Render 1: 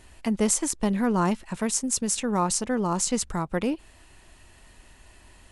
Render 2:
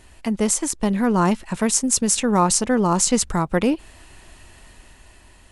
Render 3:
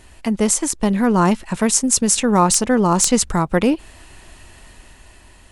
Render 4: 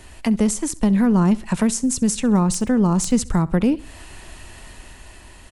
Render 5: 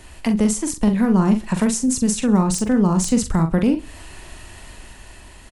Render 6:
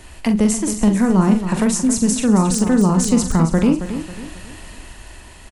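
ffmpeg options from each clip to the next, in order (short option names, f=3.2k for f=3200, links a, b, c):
-af "dynaudnorm=f=330:g=7:m=5.5dB,volume=2.5dB"
-af "aeval=exprs='(mod(1.58*val(0)+1,2)-1)/1.58':c=same,volume=3dB"
-filter_complex "[0:a]acrossover=split=260[a][b];[b]acompressor=threshold=-28dB:ratio=4[c];[a][c]amix=inputs=2:normalize=0,aecho=1:1:66|132|198:0.0891|0.0321|0.0116,volume=3dB"
-filter_complex "[0:a]asplit=2[a][b];[b]adelay=43,volume=-7dB[c];[a][c]amix=inputs=2:normalize=0"
-af "aecho=1:1:272|544|816|1088:0.299|0.116|0.0454|0.0177,volume=2dB"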